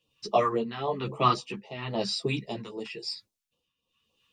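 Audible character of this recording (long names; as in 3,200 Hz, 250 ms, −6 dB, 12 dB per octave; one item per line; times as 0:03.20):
phaser sweep stages 2, 3.7 Hz, lowest notch 550–1,600 Hz
tremolo triangle 1 Hz, depth 80%
a shimmering, thickened sound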